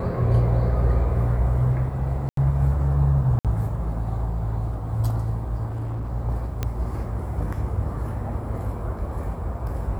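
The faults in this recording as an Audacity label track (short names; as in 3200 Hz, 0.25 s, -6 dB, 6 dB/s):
2.290000	2.370000	gap 83 ms
3.390000	3.450000	gap 57 ms
5.660000	6.100000	clipped -25.5 dBFS
6.630000	6.630000	pop -12 dBFS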